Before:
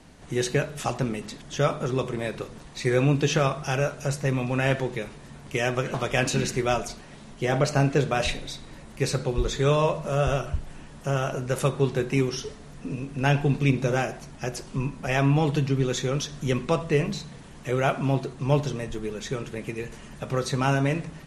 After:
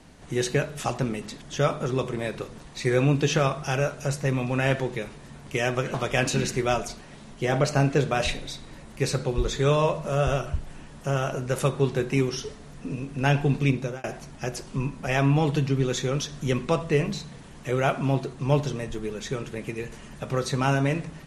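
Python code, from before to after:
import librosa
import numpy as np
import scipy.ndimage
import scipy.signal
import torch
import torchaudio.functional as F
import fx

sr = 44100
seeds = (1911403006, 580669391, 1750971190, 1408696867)

y = fx.edit(x, sr, fx.fade_out_span(start_s=13.55, length_s=0.49, curve='qsin'), tone=tone)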